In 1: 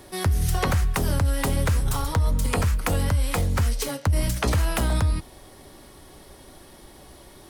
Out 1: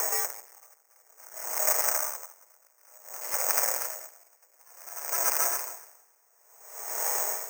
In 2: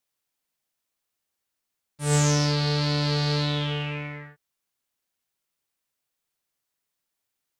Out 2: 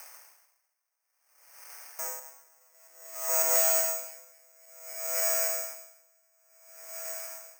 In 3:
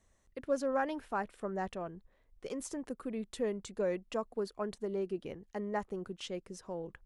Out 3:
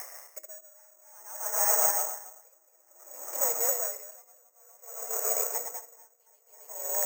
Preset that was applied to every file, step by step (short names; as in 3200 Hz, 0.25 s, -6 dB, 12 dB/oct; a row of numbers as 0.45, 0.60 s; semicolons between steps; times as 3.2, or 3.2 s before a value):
regenerating reverse delay 0.137 s, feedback 69%, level -0.5 dB; upward compressor, threshold -29 dBFS; limiter -16 dBFS; flange 0.78 Hz, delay 8.4 ms, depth 1 ms, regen +81%; overloaded stage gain 35 dB; diffused feedback echo 0.878 s, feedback 54%, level -9 dB; mistuned SSB +67 Hz 480–2300 Hz; careless resampling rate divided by 6×, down none, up zero stuff; dB-linear tremolo 0.56 Hz, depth 37 dB; match loudness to -27 LUFS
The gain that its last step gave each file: +12.0, +11.5, +10.5 dB